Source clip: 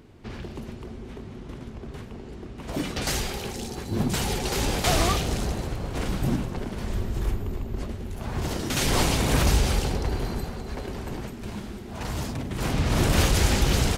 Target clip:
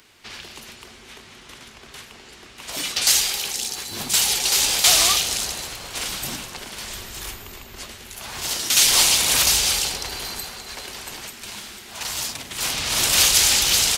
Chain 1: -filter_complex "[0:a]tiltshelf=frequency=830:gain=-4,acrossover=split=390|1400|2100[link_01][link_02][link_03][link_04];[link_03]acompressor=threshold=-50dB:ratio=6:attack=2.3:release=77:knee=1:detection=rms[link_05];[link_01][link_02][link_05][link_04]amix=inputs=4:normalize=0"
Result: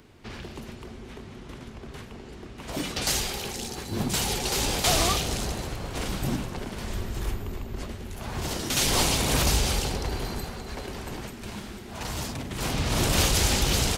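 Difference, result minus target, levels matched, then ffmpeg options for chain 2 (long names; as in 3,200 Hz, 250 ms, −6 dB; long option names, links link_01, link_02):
1,000 Hz band +8.5 dB
-filter_complex "[0:a]tiltshelf=frequency=830:gain=-15,acrossover=split=390|1400|2100[link_01][link_02][link_03][link_04];[link_03]acompressor=threshold=-50dB:ratio=6:attack=2.3:release=77:knee=1:detection=rms[link_05];[link_01][link_02][link_05][link_04]amix=inputs=4:normalize=0"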